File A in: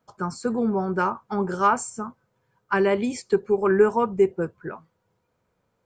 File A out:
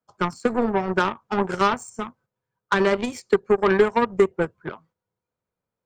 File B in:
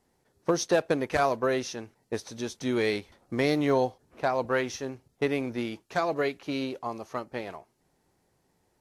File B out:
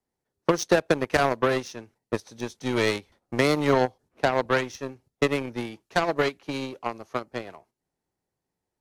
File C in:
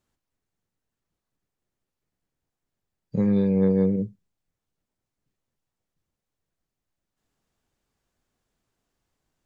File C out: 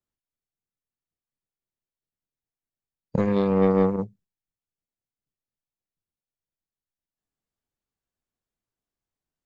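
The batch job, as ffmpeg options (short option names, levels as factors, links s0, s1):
-filter_complex "[0:a]acrossover=split=130|400[s0][s1][s2];[s0]acompressor=threshold=0.0158:ratio=4[s3];[s1]acompressor=threshold=0.0251:ratio=4[s4];[s2]acompressor=threshold=0.0501:ratio=4[s5];[s3][s4][s5]amix=inputs=3:normalize=0,agate=range=0.398:threshold=0.002:ratio=16:detection=peak,aeval=exprs='0.211*(cos(1*acos(clip(val(0)/0.211,-1,1)))-cos(1*PI/2))+0.0237*(cos(7*acos(clip(val(0)/0.211,-1,1)))-cos(7*PI/2))':c=same,volume=2.37"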